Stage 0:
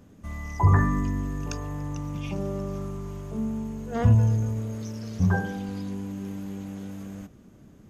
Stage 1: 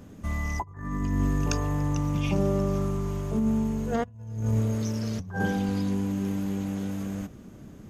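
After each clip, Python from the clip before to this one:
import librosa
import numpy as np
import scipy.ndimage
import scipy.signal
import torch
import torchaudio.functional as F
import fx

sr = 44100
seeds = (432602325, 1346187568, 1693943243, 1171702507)

y = fx.over_compress(x, sr, threshold_db=-28.0, ratio=-0.5)
y = y * librosa.db_to_amplitude(2.5)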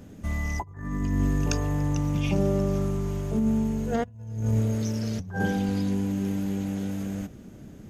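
y = fx.peak_eq(x, sr, hz=1100.0, db=-6.5, octaves=0.39)
y = y * librosa.db_to_amplitude(1.0)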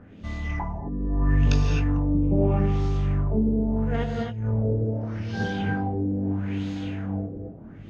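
y = fx.rev_gated(x, sr, seeds[0], gate_ms=290, shape='rising', drr_db=0.0)
y = fx.chorus_voices(y, sr, voices=2, hz=0.7, base_ms=21, depth_ms=3.2, mix_pct=30)
y = fx.filter_lfo_lowpass(y, sr, shape='sine', hz=0.78, low_hz=440.0, high_hz=4200.0, q=2.4)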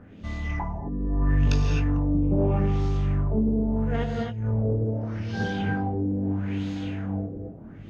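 y = 10.0 ** (-12.0 / 20.0) * np.tanh(x / 10.0 ** (-12.0 / 20.0))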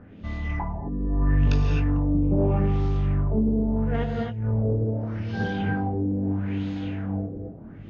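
y = fx.air_absorb(x, sr, metres=130.0)
y = y * librosa.db_to_amplitude(1.0)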